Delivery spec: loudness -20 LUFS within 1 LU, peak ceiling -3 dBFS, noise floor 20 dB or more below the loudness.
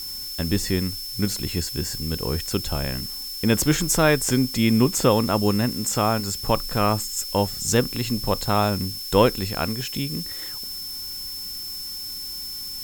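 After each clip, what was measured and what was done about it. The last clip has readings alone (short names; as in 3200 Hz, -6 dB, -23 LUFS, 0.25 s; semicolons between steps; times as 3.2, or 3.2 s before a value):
steady tone 5300 Hz; tone level -32 dBFS; noise floor -33 dBFS; noise floor target -44 dBFS; loudness -23.5 LUFS; peak -2.0 dBFS; loudness target -20.0 LUFS
-> notch 5300 Hz, Q 30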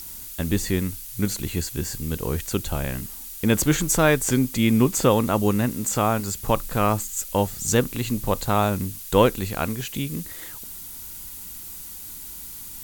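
steady tone none; noise floor -38 dBFS; noise floor target -44 dBFS
-> denoiser 6 dB, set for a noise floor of -38 dBFS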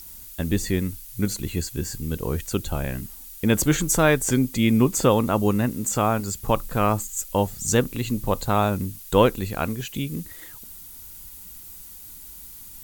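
noise floor -42 dBFS; noise floor target -44 dBFS
-> denoiser 6 dB, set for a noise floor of -42 dBFS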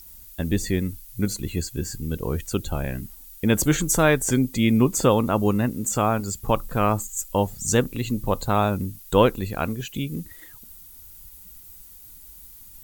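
noise floor -46 dBFS; loudness -23.5 LUFS; peak -2.5 dBFS; loudness target -20.0 LUFS
-> gain +3.5 dB; limiter -3 dBFS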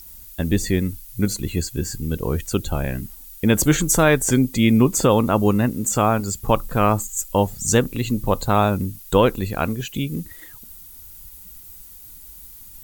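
loudness -20.5 LUFS; peak -3.0 dBFS; noise floor -42 dBFS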